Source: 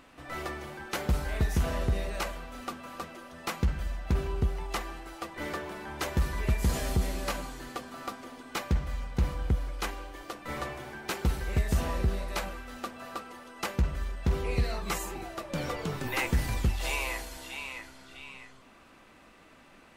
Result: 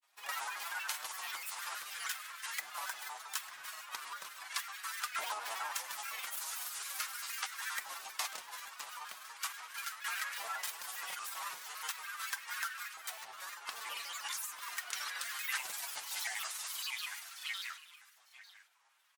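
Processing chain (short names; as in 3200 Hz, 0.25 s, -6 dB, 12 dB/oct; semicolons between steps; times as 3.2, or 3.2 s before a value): octaver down 1 oct, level -3 dB; pre-emphasis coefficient 0.97; expander -54 dBFS; low shelf 140 Hz +12 dB; comb 6.9 ms, depth 65%; compressor 6:1, threshold -53 dBFS, peak gain reduction 18.5 dB; grains, spray 29 ms, pitch spread up and down by 7 st; LFO high-pass saw up 0.37 Hz 740–1500 Hz; echo 0.933 s -16.5 dB; on a send at -17 dB: reverb RT60 1.6 s, pre-delay 3 ms; on the sum: speed mistake 24 fps film run at 25 fps; shaped vibrato square 6.3 Hz, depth 160 cents; gain +16 dB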